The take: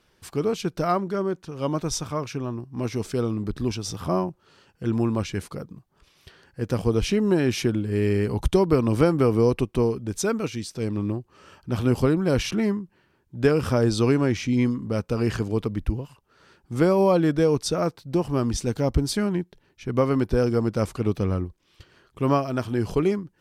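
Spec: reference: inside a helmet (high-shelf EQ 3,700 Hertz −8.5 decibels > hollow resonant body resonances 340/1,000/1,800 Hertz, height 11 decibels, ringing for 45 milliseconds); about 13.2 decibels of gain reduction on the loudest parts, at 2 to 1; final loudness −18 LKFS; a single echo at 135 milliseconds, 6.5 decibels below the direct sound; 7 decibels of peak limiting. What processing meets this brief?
downward compressor 2 to 1, threshold −39 dBFS
brickwall limiter −25.5 dBFS
high-shelf EQ 3,700 Hz −8.5 dB
single-tap delay 135 ms −6.5 dB
hollow resonant body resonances 340/1,000/1,800 Hz, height 11 dB, ringing for 45 ms
level +14 dB

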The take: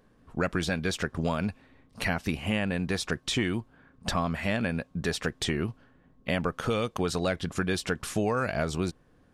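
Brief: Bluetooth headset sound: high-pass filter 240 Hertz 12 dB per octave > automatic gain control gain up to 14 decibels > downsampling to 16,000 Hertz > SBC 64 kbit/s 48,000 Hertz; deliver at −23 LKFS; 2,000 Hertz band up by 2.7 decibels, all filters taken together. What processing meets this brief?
high-pass filter 240 Hz 12 dB per octave
parametric band 2,000 Hz +3.5 dB
automatic gain control gain up to 14 dB
downsampling to 16,000 Hz
level +8 dB
SBC 64 kbit/s 48,000 Hz

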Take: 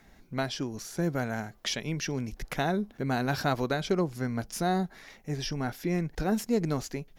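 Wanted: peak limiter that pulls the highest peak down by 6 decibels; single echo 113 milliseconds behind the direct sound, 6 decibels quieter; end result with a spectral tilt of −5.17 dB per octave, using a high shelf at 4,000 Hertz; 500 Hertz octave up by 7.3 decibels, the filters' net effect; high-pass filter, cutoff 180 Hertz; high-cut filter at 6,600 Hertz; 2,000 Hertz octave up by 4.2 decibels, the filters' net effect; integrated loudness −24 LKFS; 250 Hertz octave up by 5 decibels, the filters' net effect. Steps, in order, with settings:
high-pass filter 180 Hz
low-pass filter 6,600 Hz
parametric band 250 Hz +6 dB
parametric band 500 Hz +7.5 dB
parametric band 2,000 Hz +4 dB
high-shelf EQ 4,000 Hz +5 dB
brickwall limiter −14 dBFS
single-tap delay 113 ms −6 dB
level +3 dB

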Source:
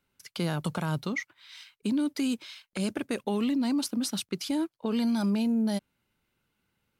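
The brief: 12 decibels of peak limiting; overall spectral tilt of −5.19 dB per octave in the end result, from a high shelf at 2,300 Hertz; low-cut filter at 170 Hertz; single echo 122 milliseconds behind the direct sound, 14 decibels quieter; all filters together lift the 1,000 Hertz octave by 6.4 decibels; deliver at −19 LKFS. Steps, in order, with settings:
high-pass filter 170 Hz
parametric band 1,000 Hz +9 dB
high-shelf EQ 2,300 Hz −6 dB
brickwall limiter −25 dBFS
single-tap delay 122 ms −14 dB
level +15 dB

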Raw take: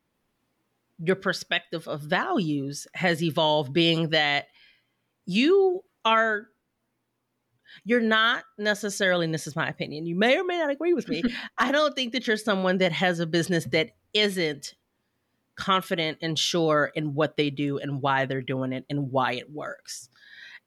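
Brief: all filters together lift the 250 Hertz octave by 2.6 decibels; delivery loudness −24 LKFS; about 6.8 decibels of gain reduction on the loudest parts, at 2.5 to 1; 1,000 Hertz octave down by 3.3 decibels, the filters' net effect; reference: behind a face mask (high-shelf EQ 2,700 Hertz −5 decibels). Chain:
parametric band 250 Hz +4 dB
parametric band 1,000 Hz −4 dB
downward compressor 2.5 to 1, threshold −26 dBFS
high-shelf EQ 2,700 Hz −5 dB
level +6 dB

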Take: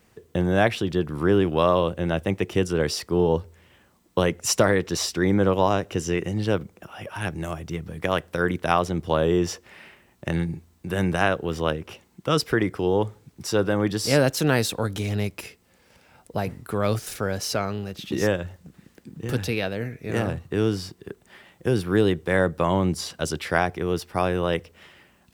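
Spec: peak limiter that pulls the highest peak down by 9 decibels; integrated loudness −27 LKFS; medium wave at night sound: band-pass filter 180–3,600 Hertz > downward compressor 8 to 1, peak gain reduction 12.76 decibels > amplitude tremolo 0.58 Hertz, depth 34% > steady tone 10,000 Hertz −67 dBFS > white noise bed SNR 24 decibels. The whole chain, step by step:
brickwall limiter −13 dBFS
band-pass filter 180–3,600 Hz
downward compressor 8 to 1, threshold −31 dBFS
amplitude tremolo 0.58 Hz, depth 34%
steady tone 10,000 Hz −67 dBFS
white noise bed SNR 24 dB
level +11.5 dB

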